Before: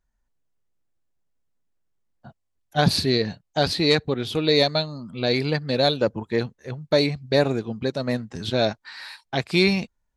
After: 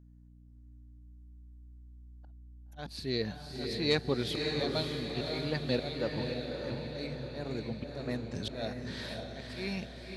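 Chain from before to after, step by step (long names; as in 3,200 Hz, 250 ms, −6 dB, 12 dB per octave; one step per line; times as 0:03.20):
volume swells 520 ms
mains hum 60 Hz, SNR 17 dB
feedback delay with all-pass diffusion 569 ms, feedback 55%, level −3.5 dB
level −6 dB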